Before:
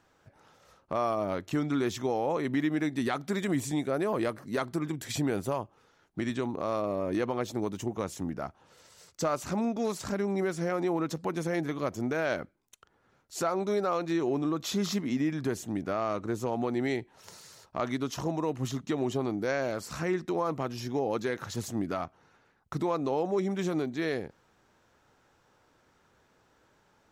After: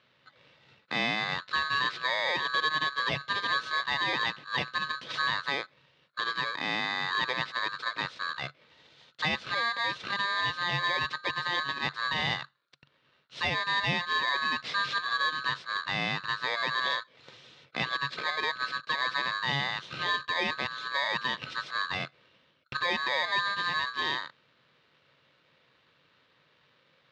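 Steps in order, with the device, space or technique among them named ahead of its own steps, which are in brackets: ring modulator pedal into a guitar cabinet (polarity switched at an audio rate 1.4 kHz; cabinet simulation 110–4300 Hz, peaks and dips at 140 Hz +10 dB, 520 Hz +5 dB, 800 Hz -6 dB, 3.7 kHz +7 dB)

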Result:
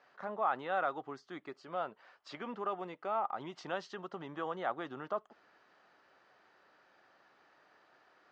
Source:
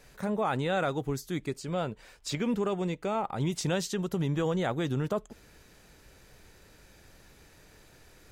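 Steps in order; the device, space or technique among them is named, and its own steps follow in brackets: phone earpiece (cabinet simulation 450–3900 Hz, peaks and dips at 460 Hz -6 dB, 740 Hz +4 dB, 1.2 kHz +7 dB, 2.4 kHz -8 dB, 3.7 kHz -8 dB); trim -4.5 dB

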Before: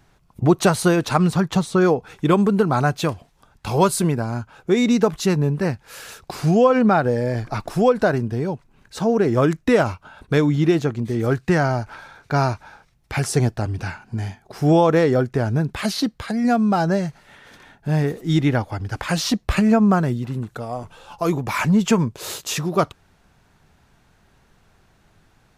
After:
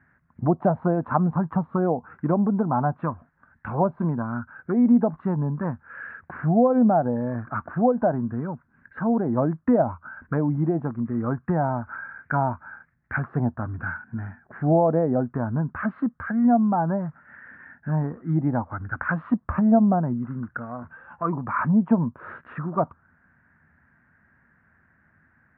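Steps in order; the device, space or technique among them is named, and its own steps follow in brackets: envelope filter bass rig (touch-sensitive low-pass 710–1800 Hz down, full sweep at -12 dBFS; cabinet simulation 65–2100 Hz, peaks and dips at 82 Hz +7 dB, 160 Hz +4 dB, 240 Hz +9 dB, 420 Hz -7 dB, 780 Hz -4 dB, 1.6 kHz +5 dB); trim -8.5 dB

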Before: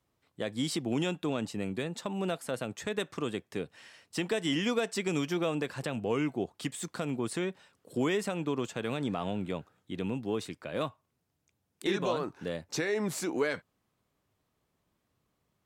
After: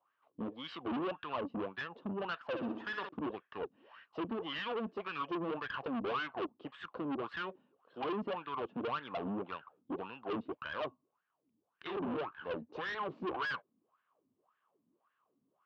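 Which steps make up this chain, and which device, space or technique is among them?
wah-wah guitar rig (wah-wah 1.8 Hz 230–1700 Hz, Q 7.2; valve stage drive 49 dB, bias 0.55; cabinet simulation 91–4100 Hz, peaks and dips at 1.1 kHz +7 dB, 2 kHz -5 dB, 2.9 kHz +8 dB); 2.47–3.09 s: flutter echo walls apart 10.7 m, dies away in 0.58 s; trim +14.5 dB

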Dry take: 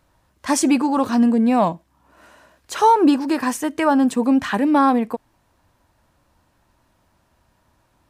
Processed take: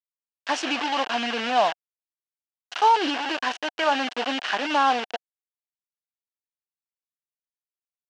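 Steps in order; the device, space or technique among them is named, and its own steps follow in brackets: hand-held game console (bit crusher 4-bit; cabinet simulation 490–5500 Hz, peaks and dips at 730 Hz +7 dB, 1.6 kHz +6 dB, 2.9 kHz +10 dB); trim -5.5 dB

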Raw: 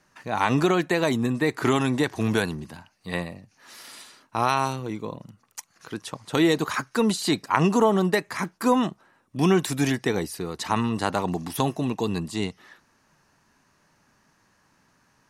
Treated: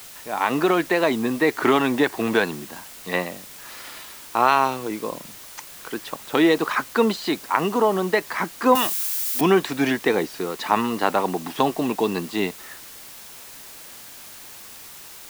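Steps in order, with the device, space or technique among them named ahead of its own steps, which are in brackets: dictaphone (band-pass 280–3400 Hz; level rider gain up to 8.5 dB; wow and flutter; white noise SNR 18 dB); 8.75–9.41 s: tilt EQ +4.5 dB/octave; trim -1 dB

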